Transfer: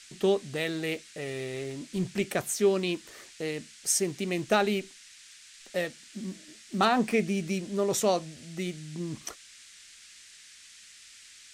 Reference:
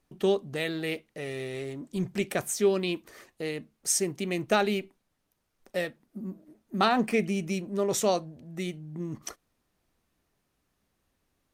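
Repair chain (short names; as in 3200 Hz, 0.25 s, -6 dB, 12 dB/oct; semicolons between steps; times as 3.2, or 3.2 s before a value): clip repair -13.5 dBFS; noise print and reduce 24 dB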